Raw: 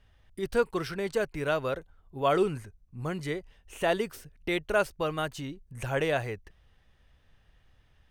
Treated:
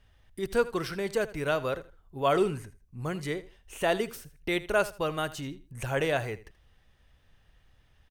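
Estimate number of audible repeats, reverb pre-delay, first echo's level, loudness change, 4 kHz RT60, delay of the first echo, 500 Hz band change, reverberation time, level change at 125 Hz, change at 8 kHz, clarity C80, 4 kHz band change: 2, no reverb, -17.0 dB, 0.0 dB, no reverb, 80 ms, 0.0 dB, no reverb, 0.0 dB, +3.0 dB, no reverb, +1.0 dB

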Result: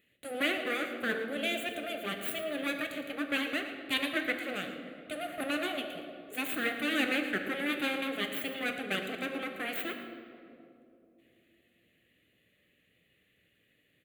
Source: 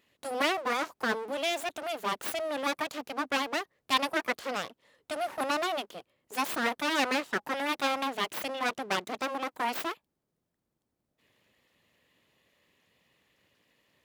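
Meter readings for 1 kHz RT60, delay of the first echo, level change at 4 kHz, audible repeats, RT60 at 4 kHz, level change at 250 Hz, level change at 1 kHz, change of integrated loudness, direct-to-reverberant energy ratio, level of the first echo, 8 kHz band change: 2.3 s, 113 ms, -2.0 dB, 1, 1.5 s, +1.5 dB, -9.5 dB, -2.0 dB, 4.5 dB, -13.0 dB, -6.0 dB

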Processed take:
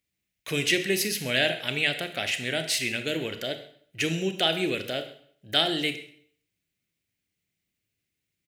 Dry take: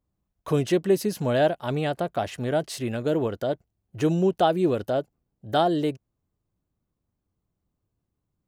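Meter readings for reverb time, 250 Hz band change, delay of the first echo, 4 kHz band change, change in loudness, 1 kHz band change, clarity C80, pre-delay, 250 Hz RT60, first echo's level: 0.60 s, -6.0 dB, 132 ms, +11.5 dB, -1.0 dB, -9.0 dB, 13.0 dB, 25 ms, 0.60 s, -19.5 dB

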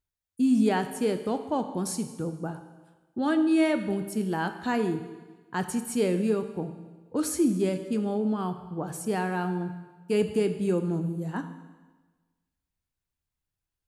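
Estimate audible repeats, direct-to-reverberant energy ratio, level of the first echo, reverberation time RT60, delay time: no echo, 8.0 dB, no echo, 1.3 s, no echo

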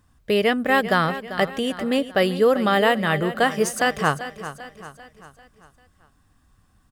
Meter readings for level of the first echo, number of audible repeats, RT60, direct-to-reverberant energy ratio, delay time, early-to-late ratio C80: -13.0 dB, 4, no reverb, no reverb, 393 ms, no reverb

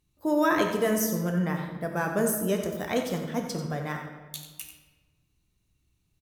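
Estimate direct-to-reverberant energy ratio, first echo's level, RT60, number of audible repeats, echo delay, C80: 2.5 dB, -9.5 dB, 1.4 s, 1, 91 ms, 6.0 dB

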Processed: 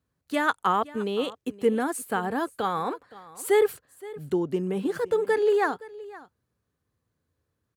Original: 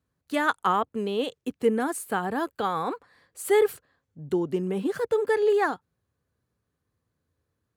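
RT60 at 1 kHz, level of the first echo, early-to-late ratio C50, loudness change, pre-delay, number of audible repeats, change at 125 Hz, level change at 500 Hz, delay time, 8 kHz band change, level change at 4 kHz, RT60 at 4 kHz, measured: no reverb, -19.0 dB, no reverb, 0.0 dB, no reverb, 1, 0.0 dB, 0.0 dB, 519 ms, 0.0 dB, 0.0 dB, no reverb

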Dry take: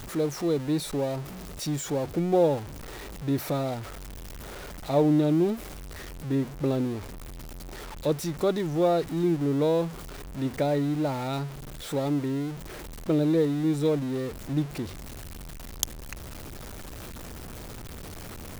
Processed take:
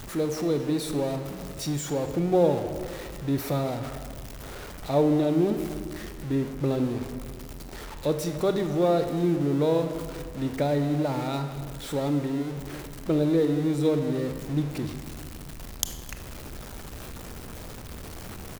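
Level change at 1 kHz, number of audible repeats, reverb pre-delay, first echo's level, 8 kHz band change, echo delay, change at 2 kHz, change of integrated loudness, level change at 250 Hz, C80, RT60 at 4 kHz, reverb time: +0.5 dB, 1, 25 ms, -19.5 dB, +0.5 dB, 261 ms, +0.5 dB, +0.5 dB, +0.5 dB, 9.0 dB, 1.0 s, 1.8 s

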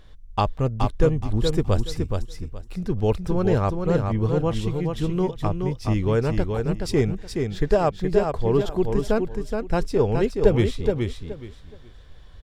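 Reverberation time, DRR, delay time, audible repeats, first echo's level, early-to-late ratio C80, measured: no reverb, no reverb, 422 ms, 3, -5.0 dB, no reverb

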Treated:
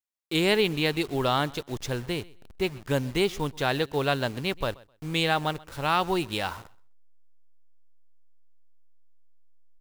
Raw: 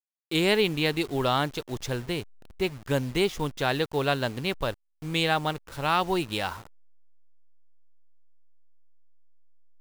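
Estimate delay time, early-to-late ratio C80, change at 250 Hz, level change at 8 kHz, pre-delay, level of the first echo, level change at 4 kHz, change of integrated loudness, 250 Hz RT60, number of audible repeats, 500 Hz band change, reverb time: 129 ms, no reverb, 0.0 dB, 0.0 dB, no reverb, -23.0 dB, 0.0 dB, 0.0 dB, no reverb, 1, 0.0 dB, no reverb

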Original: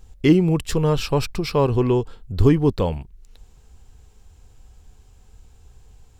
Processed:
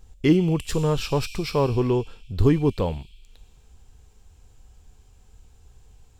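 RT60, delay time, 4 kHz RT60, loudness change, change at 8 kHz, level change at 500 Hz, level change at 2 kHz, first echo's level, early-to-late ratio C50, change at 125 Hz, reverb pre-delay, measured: 1.6 s, no echo, 1.6 s, -3.0 dB, no reading, -3.0 dB, -2.5 dB, no echo, 13.0 dB, -3.0 dB, 7 ms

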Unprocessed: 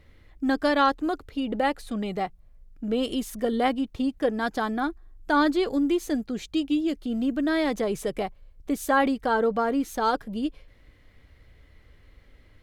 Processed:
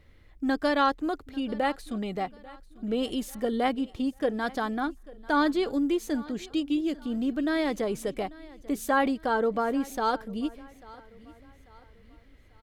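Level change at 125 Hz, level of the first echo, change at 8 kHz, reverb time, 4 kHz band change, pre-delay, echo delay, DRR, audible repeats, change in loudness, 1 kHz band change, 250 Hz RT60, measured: -2.5 dB, -21.0 dB, -2.5 dB, no reverb, -2.5 dB, no reverb, 842 ms, no reverb, 2, -2.5 dB, -2.5 dB, no reverb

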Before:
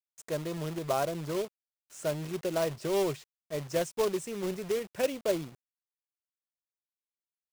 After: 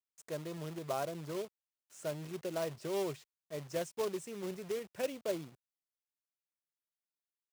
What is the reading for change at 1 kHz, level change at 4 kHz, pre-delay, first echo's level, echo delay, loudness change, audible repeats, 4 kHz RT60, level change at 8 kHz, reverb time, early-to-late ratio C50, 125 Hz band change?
-7.0 dB, -7.0 dB, no reverb, no echo, no echo, -7.0 dB, no echo, no reverb, -7.0 dB, no reverb, no reverb, -7.0 dB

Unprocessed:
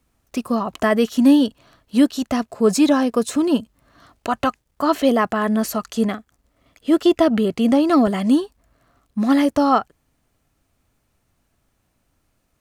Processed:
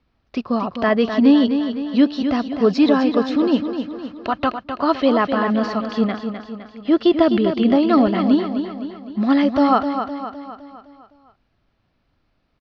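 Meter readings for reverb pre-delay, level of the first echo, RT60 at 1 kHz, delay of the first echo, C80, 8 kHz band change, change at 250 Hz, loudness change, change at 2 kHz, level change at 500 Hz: no reverb, -8.0 dB, no reverb, 256 ms, no reverb, under -15 dB, +1.0 dB, 0.0 dB, +1.0 dB, +1.0 dB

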